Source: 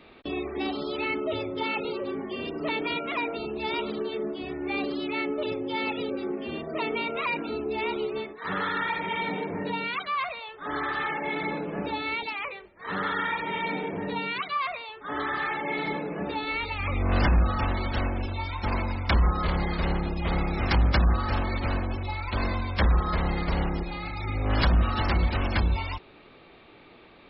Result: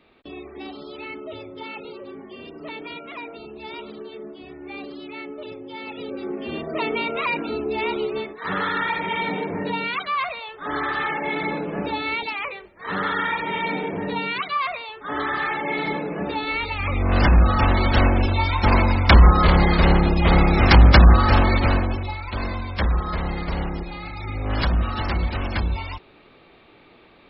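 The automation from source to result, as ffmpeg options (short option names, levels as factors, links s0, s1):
-af "volume=3.55,afade=t=in:st=5.86:d=0.73:silence=0.298538,afade=t=in:st=17.14:d=0.9:silence=0.473151,afade=t=out:st=21.47:d=0.72:silence=0.298538"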